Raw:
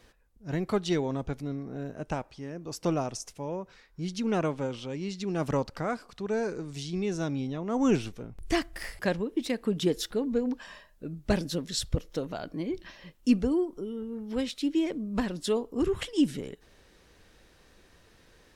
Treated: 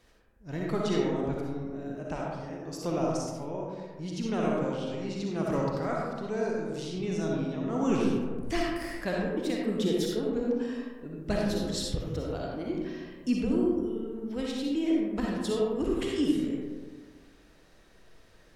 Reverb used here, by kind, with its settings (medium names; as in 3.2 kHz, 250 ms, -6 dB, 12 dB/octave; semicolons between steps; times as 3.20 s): algorithmic reverb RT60 1.5 s, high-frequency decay 0.35×, pre-delay 20 ms, DRR -3 dB; trim -5 dB